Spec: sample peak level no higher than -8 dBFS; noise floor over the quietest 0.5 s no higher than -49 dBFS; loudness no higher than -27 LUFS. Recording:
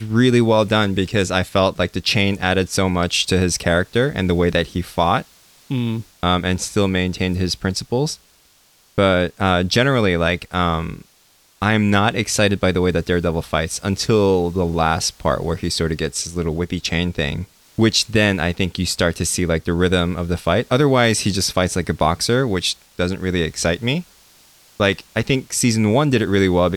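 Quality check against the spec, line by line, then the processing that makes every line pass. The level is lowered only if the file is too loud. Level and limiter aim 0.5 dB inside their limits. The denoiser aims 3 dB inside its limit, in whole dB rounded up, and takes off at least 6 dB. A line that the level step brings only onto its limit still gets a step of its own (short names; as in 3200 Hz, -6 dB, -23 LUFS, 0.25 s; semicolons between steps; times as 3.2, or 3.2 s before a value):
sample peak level -3.5 dBFS: fail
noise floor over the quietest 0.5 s -55 dBFS: OK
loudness -18.5 LUFS: fail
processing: gain -9 dB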